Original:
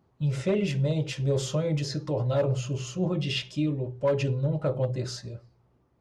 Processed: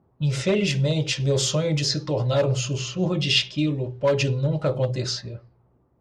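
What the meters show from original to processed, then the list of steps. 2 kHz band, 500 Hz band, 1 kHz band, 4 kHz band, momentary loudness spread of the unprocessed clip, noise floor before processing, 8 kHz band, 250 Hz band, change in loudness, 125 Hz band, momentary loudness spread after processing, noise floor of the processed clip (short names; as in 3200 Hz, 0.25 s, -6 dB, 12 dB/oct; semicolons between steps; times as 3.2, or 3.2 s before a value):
+9.0 dB, +4.0 dB, +5.0 dB, +11.5 dB, 6 LU, -67 dBFS, +10.5 dB, +3.5 dB, +5.0 dB, +3.5 dB, 7 LU, -64 dBFS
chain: low-pass opened by the level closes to 950 Hz, open at -24.5 dBFS; bell 4900 Hz +9.5 dB 2.3 oct; gain +3.5 dB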